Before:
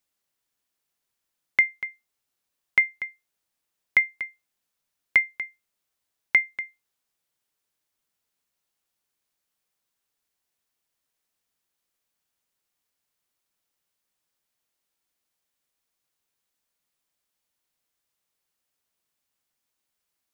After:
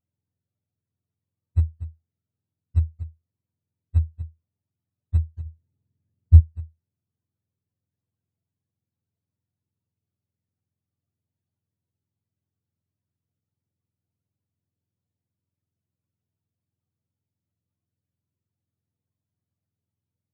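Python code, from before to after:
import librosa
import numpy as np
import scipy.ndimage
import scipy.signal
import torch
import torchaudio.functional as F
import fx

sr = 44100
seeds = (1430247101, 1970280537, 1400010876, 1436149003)

y = fx.octave_mirror(x, sr, pivot_hz=410.0)
y = fx.low_shelf(y, sr, hz=380.0, db=11.0, at=(5.45, 6.39), fade=0.02)
y = y * librosa.db_to_amplitude(2.0)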